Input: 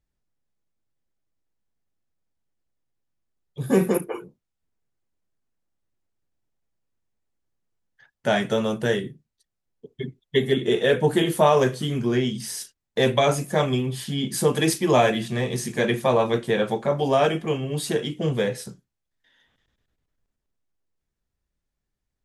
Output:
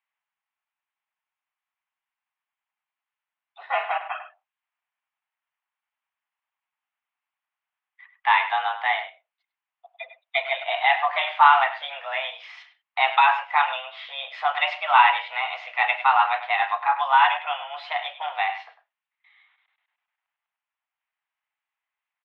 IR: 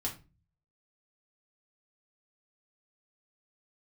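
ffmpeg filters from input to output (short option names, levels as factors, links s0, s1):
-filter_complex "[0:a]asplit=2[s0][s1];[s1]adelay=100,highpass=300,lowpass=3400,asoftclip=type=hard:threshold=0.168,volume=0.282[s2];[s0][s2]amix=inputs=2:normalize=0,highpass=f=570:t=q:w=0.5412,highpass=f=570:t=q:w=1.307,lowpass=f=2700:t=q:w=0.5176,lowpass=f=2700:t=q:w=0.7071,lowpass=f=2700:t=q:w=1.932,afreqshift=270,crystalizer=i=2.5:c=0,volume=1.58"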